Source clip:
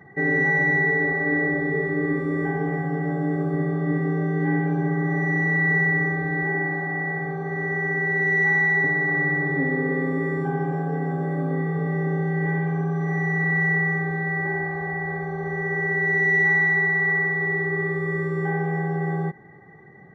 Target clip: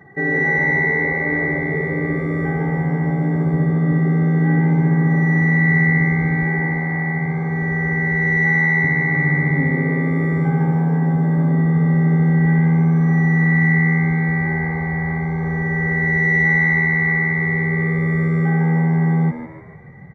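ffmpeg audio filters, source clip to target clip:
-filter_complex "[0:a]asplit=6[a][b][c][d][e][f];[b]adelay=150,afreqshift=79,volume=-9dB[g];[c]adelay=300,afreqshift=158,volume=-16.1dB[h];[d]adelay=450,afreqshift=237,volume=-23.3dB[i];[e]adelay=600,afreqshift=316,volume=-30.4dB[j];[f]adelay=750,afreqshift=395,volume=-37.5dB[k];[a][g][h][i][j][k]amix=inputs=6:normalize=0,asubboost=boost=7:cutoff=130,volume=2.5dB"

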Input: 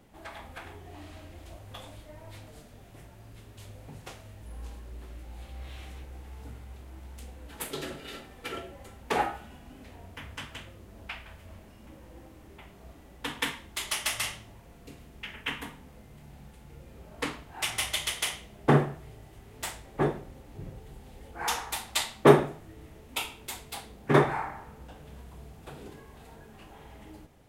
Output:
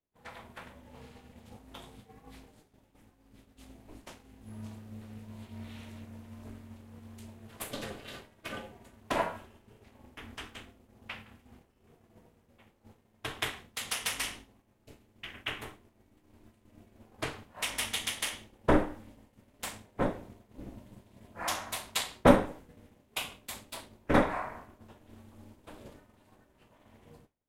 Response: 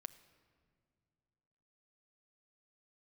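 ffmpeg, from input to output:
-af "aeval=exprs='val(0)*sin(2*PI*160*n/s)':c=same,agate=range=-33dB:threshold=-44dB:ratio=3:detection=peak"

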